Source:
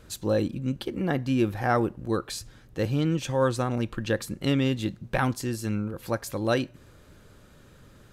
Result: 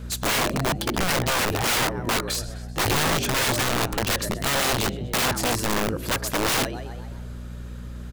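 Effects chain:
echo with shifted repeats 128 ms, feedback 53%, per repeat +74 Hz, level −17 dB
hum with harmonics 60 Hz, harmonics 4, −43 dBFS −6 dB per octave
wrap-around overflow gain 25 dB
level +7.5 dB

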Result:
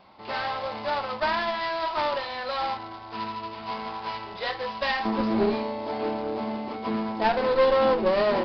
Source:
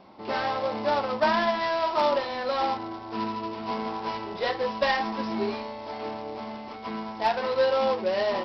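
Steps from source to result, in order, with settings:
parametric band 300 Hz −10.5 dB 2.1 octaves, from 0:05.05 +7 dB
asymmetric clip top −27 dBFS
downsampling to 11,025 Hz
level +2 dB

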